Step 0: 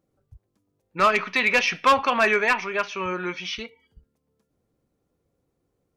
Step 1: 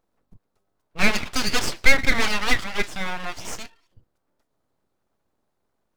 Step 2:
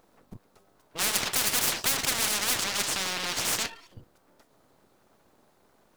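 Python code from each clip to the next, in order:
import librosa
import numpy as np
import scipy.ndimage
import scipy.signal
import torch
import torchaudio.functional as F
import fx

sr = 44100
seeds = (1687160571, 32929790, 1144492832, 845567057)

y1 = fx.graphic_eq_31(x, sr, hz=(1000, 1600, 4000), db=(11, -3, 6))
y1 = np.abs(y1)
y2 = fx.low_shelf(y1, sr, hz=90.0, db=-10.0)
y2 = fx.spectral_comp(y2, sr, ratio=10.0)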